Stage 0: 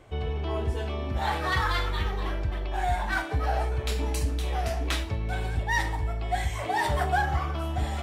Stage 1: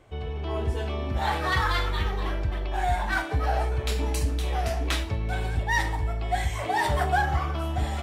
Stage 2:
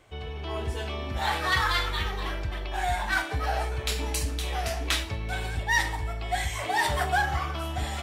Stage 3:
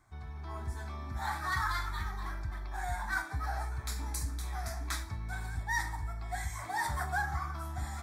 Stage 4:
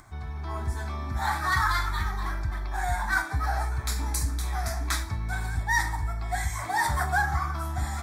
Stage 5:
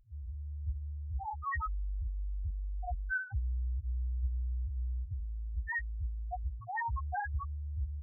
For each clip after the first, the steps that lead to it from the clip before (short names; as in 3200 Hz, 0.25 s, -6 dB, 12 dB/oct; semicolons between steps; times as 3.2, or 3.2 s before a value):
AGC gain up to 4.5 dB; gain -3 dB
tilt shelf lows -4.5 dB, about 1200 Hz
fixed phaser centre 1200 Hz, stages 4; gain -5.5 dB
upward compressor, threshold -54 dBFS; gain +8 dB
loudest bins only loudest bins 1; gain -1 dB